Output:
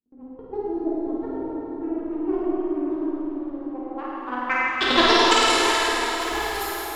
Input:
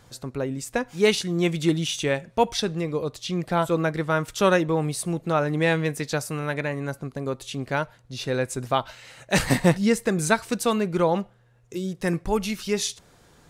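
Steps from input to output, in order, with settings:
change of speed 1.94×
power curve on the samples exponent 2
low-pass filter sweep 310 Hz → 13,000 Hz, 0:03.33–0:05.67
on a send: flutter between parallel walls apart 9 metres, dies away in 0.82 s
on the sum: dense smooth reverb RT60 4.3 s, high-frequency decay 0.85×, DRR −7 dB
level +1.5 dB

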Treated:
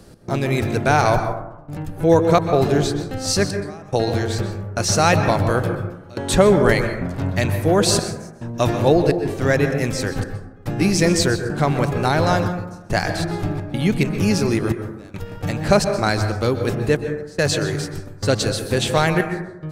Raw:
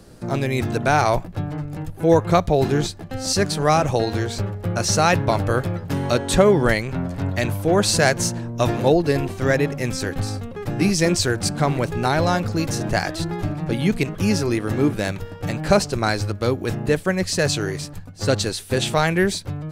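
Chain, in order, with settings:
gate pattern "x.xxxxxxx...xxxx" 107 BPM −24 dB
dense smooth reverb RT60 0.92 s, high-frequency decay 0.3×, pre-delay 115 ms, DRR 7.5 dB
level +1 dB

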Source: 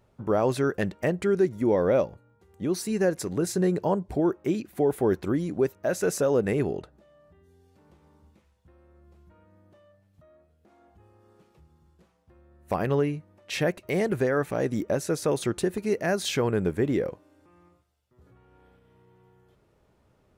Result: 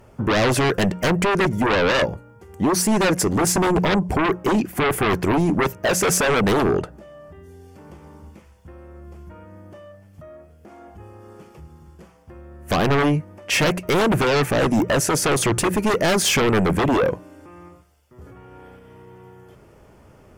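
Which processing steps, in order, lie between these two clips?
parametric band 3,900 Hz −13.5 dB 0.21 octaves
mains-hum notches 60/120/180 Hz
in parallel at −5 dB: sine wavefolder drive 15 dB, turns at −12 dBFS

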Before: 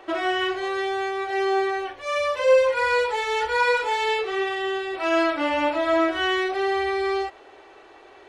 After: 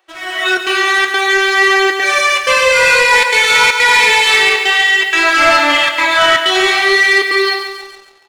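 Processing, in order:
spectral tilt +4.5 dB per octave
reverb whose tail is shaped and stops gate 340 ms rising, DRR −3.5 dB
dynamic equaliser 2,000 Hz, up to +6 dB, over −33 dBFS, Q 1.6
noise reduction from a noise print of the clip's start 15 dB
in parallel at +3 dB: downward compressor, threshold −25 dBFS, peak gain reduction 15 dB
on the sum: gate pattern "xxxxxx.xxxx.xx" 158 BPM
flanger 0.54 Hz, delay 5.3 ms, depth 9.4 ms, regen +60%
on a send: repeating echo 140 ms, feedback 57%, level −9.5 dB
on the sum: leveller curve on the samples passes 2

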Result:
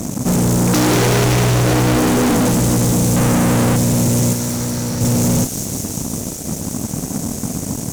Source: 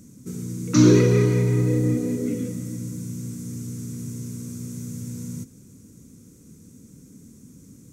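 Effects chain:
0:00.96–0:02.14: mains-hum notches 50/100/150/200/250 Hz
0:03.16–0:03.76: low shelf with overshoot 780 Hz +11.5 dB, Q 1.5
fuzz pedal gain 42 dB, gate −50 dBFS
0:04.33–0:05.01: Chebyshev low-pass with heavy ripple 6,000 Hz, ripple 6 dB
on a send: delay with a high-pass on its return 188 ms, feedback 81%, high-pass 4,000 Hz, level −4 dB

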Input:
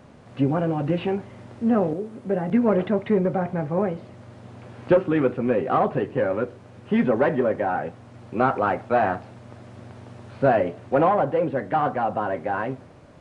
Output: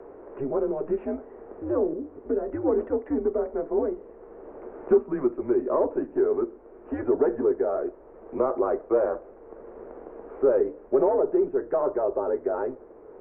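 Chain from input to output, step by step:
Gaussian smoothing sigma 5.6 samples
low shelf with overshoot 370 Hz −12 dB, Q 3
frequency shifter −140 Hz
multiband upward and downward compressor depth 40%
level −4.5 dB

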